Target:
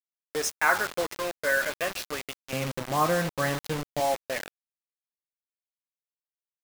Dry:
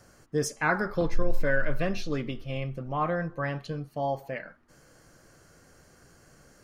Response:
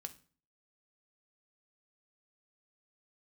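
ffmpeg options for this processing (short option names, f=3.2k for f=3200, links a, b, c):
-af "asetnsamples=n=441:p=0,asendcmd='2.53 highpass f 150;4 highpass f 400',highpass=630,aecho=1:1:158|316|474|632:0.0841|0.0488|0.0283|0.0164,acrusher=bits=5:mix=0:aa=0.000001,volume=4dB"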